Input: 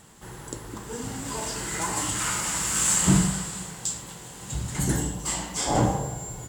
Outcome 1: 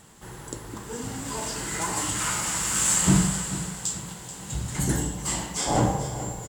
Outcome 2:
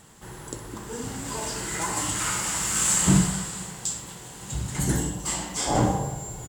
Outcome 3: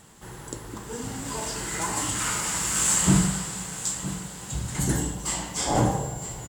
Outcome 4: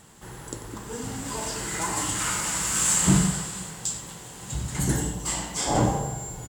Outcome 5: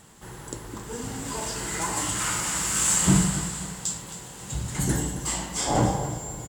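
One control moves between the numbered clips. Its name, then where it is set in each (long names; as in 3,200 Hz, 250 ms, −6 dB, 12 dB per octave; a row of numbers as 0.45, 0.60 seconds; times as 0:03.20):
repeating echo, delay time: 435, 63, 963, 92, 269 milliseconds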